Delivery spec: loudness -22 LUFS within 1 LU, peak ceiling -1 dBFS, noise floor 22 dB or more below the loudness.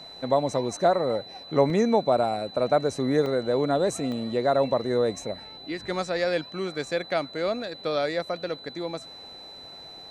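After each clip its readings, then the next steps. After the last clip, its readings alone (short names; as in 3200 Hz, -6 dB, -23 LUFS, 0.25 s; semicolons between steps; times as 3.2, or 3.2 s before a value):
dropouts 3; longest dropout 1.6 ms; steady tone 4000 Hz; tone level -42 dBFS; loudness -26.0 LUFS; peak -7.5 dBFS; loudness target -22.0 LUFS
-> interpolate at 1.7/3.26/4.12, 1.6 ms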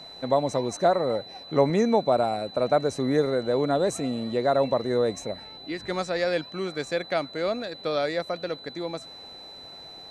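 dropouts 0; steady tone 4000 Hz; tone level -42 dBFS
-> notch 4000 Hz, Q 30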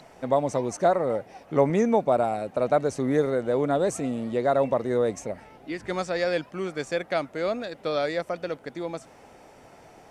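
steady tone none; loudness -26.0 LUFS; peak -7.5 dBFS; loudness target -22.0 LUFS
-> gain +4 dB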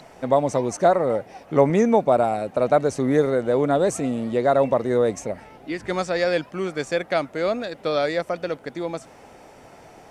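loudness -22.0 LUFS; peak -3.5 dBFS; noise floor -48 dBFS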